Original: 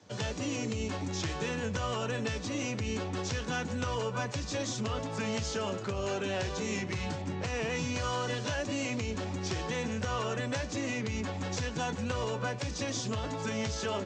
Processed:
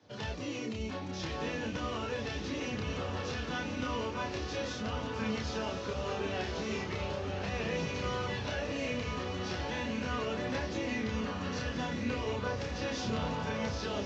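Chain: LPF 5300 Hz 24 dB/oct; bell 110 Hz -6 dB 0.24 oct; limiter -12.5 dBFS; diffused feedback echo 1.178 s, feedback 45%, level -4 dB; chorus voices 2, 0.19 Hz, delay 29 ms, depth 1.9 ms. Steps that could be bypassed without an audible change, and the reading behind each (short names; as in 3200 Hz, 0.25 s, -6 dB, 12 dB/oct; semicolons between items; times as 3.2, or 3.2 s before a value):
limiter -12.5 dBFS: input peak -20.0 dBFS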